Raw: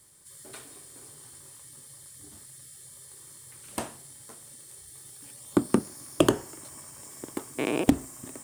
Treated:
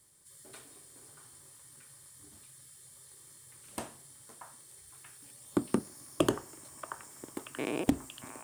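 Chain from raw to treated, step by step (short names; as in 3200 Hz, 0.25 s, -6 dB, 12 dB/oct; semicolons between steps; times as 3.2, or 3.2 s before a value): delay with a stepping band-pass 0.632 s, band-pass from 1200 Hz, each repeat 0.7 oct, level -4 dB; gain -6.5 dB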